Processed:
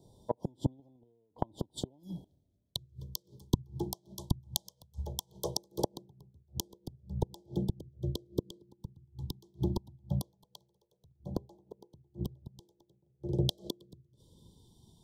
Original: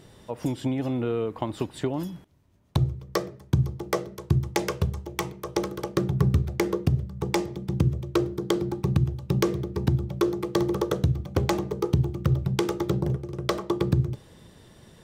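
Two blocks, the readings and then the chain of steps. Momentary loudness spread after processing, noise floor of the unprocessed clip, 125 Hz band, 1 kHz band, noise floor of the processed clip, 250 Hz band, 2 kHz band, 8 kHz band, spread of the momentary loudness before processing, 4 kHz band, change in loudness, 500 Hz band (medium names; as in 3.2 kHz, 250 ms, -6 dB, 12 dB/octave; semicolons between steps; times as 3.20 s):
16 LU, -53 dBFS, -13.0 dB, -12.5 dB, -75 dBFS, -12.5 dB, under -30 dB, -4.0 dB, 6 LU, -4.0 dB, -11.0 dB, -13.5 dB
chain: inverted gate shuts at -19 dBFS, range -33 dB; LFO notch saw down 0.18 Hz 260–2800 Hz; Chebyshev band-stop 1–3.2 kHz, order 5; three bands expanded up and down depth 70%; trim +2 dB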